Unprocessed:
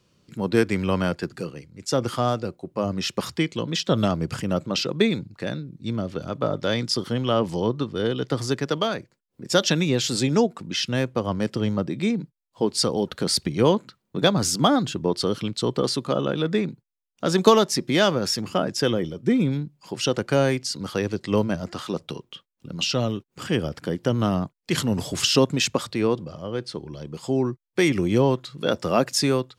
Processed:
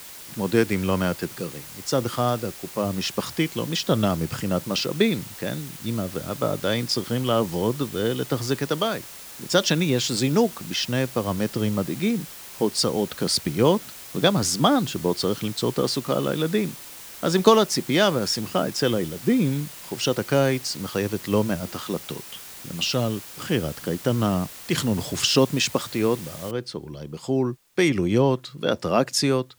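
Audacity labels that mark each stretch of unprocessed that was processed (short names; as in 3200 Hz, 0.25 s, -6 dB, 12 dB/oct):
26.510000	26.510000	noise floor step -41 dB -64 dB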